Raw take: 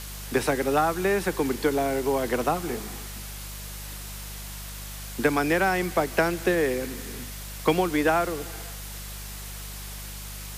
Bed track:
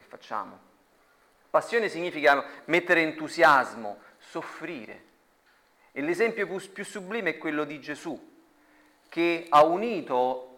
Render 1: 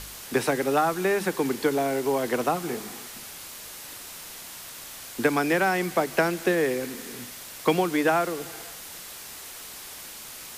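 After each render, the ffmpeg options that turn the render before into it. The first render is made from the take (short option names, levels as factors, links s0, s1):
-af "bandreject=f=50:t=h:w=4,bandreject=f=100:t=h:w=4,bandreject=f=150:t=h:w=4,bandreject=f=200:t=h:w=4"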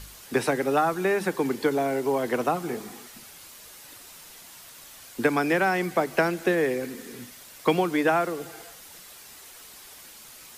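-af "afftdn=nr=7:nf=-41"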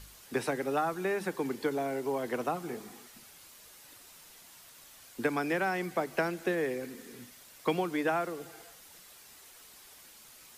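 -af "volume=0.422"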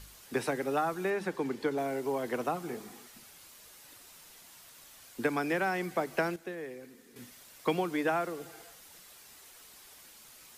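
-filter_complex "[0:a]asettb=1/sr,asplit=3[s0][s1][s2];[s0]atrim=end=1.104[s3];[s1]atrim=start=1.1:end=1.78,asetpts=PTS-STARTPTS,afade=t=in:d=0.004:c=qsin,afade=t=out:st=0.676:d=0.004:c=qsin,highshelf=f=9100:g=-11.5[s4];[s2]atrim=start=1.776[s5];[s3][s4]acrossfade=d=0.004:c1=hsin:c2=qsin[s6];[s6][s5]acrossfade=d=0.004:c1=qsin:c2=hsin,asplit=3[s7][s8][s9];[s7]atrim=end=6.362[s10];[s8]atrim=start=6.358:end=7.162,asetpts=PTS-STARTPTS,volume=0.335[s11];[s9]atrim=start=7.158[s12];[s10][s11]acrossfade=d=0.004:c1=hsin:c2=hsin[s13];[s13][s12]acrossfade=d=0.004:c1=hsin:c2=hsin"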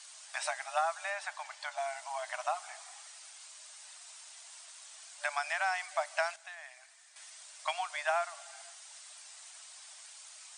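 -af "aemphasis=mode=production:type=cd,afftfilt=real='re*between(b*sr/4096,590,9500)':imag='im*between(b*sr/4096,590,9500)':win_size=4096:overlap=0.75"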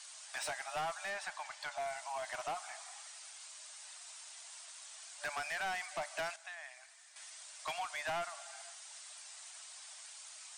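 -af "asoftclip=type=tanh:threshold=0.02"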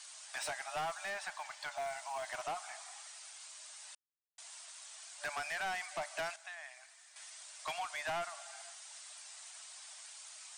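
-filter_complex "[0:a]asettb=1/sr,asplit=3[s0][s1][s2];[s0]atrim=end=0.784[s3];[s1]atrim=start=0.78:end=2.42,asetpts=PTS-STARTPTS,afade=t=in:d=0.004:c=qsin,afade=t=out:st=1.636:d=0.004:c=qsin,acrusher=bits=8:mode=log:mix=0:aa=0.000001[s4];[s2]atrim=start=2.416[s5];[s3][s4]acrossfade=d=0.004:c1=hsin:c2=qsin[s6];[s6][s5]acrossfade=d=0.004:c1=qsin:c2=hsin,asplit=3[s7][s8][s9];[s7]atrim=end=3.95,asetpts=PTS-STARTPTS,afade=t=out:st=3.946:d=0.004:c=hsin[s10];[s8]atrim=start=3.95:end=4.38,asetpts=PTS-STARTPTS,volume=0[s11];[s9]atrim=start=4.38,asetpts=PTS-STARTPTS,afade=t=in:d=0.004:c=hsin[s12];[s10][s11][s12]concat=n=3:v=0:a=1"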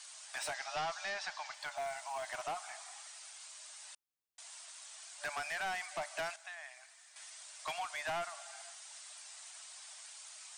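-filter_complex "[0:a]asettb=1/sr,asplit=3[s0][s1][s2];[s0]atrim=end=0.544[s3];[s1]atrim=start=0.54:end=1.54,asetpts=PTS-STARTPTS,afade=t=in:d=0.004:c=qsin,afade=t=out:st=0.996:d=0.004:c=qsin,lowpass=f=5300:t=q:w=2.1[s4];[s2]atrim=start=1.536[s5];[s3][s4]acrossfade=d=0.004:c1=hsin:c2=qsin[s6];[s6][s5]acrossfade=d=0.004:c1=qsin:c2=hsin"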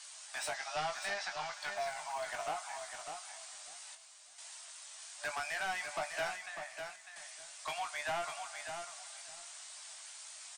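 -filter_complex "[0:a]asplit=2[s0][s1];[s1]adelay=20,volume=0.447[s2];[s0][s2]amix=inputs=2:normalize=0,aecho=1:1:600|1200|1800:0.447|0.0804|0.0145"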